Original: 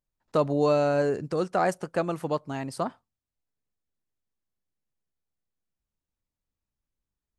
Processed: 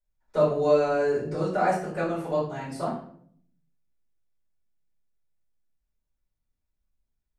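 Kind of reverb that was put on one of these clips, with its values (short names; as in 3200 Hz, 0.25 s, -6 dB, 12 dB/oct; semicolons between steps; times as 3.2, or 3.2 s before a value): shoebox room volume 81 m³, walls mixed, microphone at 4.3 m; gain -15.5 dB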